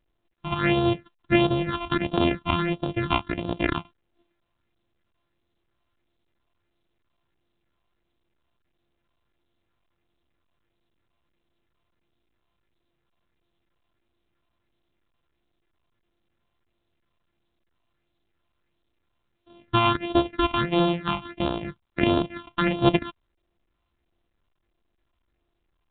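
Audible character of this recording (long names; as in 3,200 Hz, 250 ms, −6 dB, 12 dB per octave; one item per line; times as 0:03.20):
a buzz of ramps at a fixed pitch in blocks of 128 samples
phaser sweep stages 6, 1.5 Hz, lowest notch 460–2,000 Hz
mu-law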